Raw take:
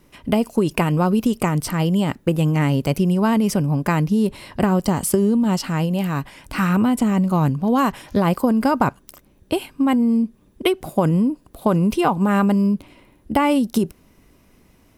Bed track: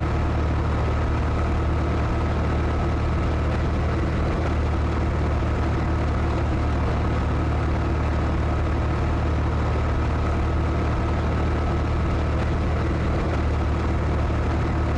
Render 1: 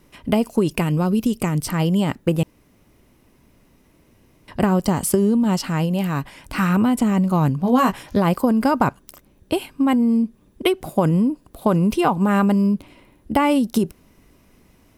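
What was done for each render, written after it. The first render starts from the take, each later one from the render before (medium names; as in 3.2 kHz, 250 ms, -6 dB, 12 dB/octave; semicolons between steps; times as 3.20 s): 0.71–1.69 s: peaking EQ 980 Hz -6 dB 2.2 oct; 2.43–4.48 s: room tone; 7.62–8.03 s: doubling 16 ms -5 dB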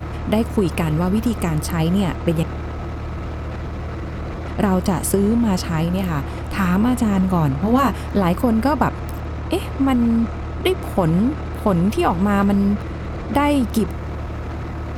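add bed track -5 dB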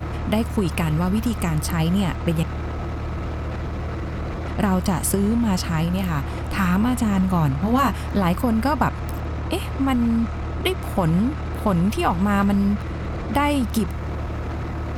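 dynamic bell 400 Hz, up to -6 dB, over -30 dBFS, Q 0.85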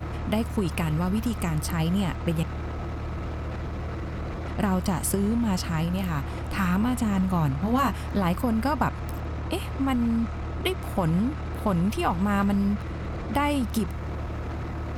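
trim -4.5 dB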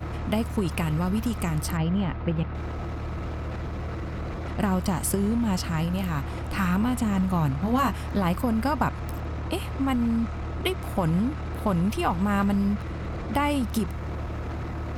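1.77–2.55 s: distance through air 260 m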